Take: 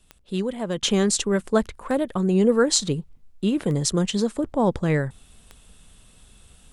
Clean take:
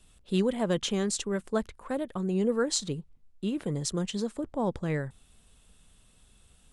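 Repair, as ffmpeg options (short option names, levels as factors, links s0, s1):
-af "adeclick=t=4,asetnsamples=n=441:p=0,asendcmd='0.83 volume volume -8.5dB',volume=1"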